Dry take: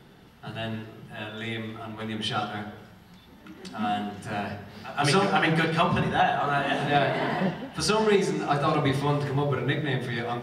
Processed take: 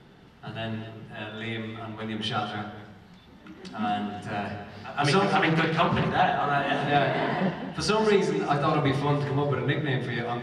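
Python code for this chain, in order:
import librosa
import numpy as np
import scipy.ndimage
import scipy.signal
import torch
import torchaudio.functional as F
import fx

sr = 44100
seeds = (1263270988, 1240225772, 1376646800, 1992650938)

y = fx.air_absorb(x, sr, metres=54.0)
y = y + 10.0 ** (-12.5 / 20.0) * np.pad(y, (int(226 * sr / 1000.0), 0))[:len(y)]
y = fx.doppler_dist(y, sr, depth_ms=0.31, at=(5.35, 6.43))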